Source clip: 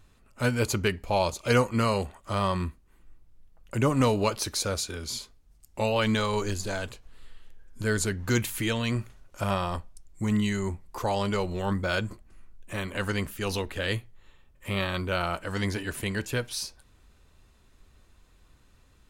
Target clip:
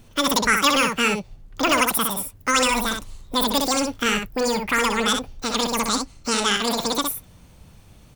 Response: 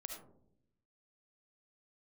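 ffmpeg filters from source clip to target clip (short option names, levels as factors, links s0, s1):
-filter_complex "[0:a]aecho=1:1:146:0.501,asetrate=103194,aresample=44100,acrossover=split=1400[s0][s1];[s0]asoftclip=type=tanh:threshold=0.0447[s2];[s2][s1]amix=inputs=2:normalize=0,volume=2.51"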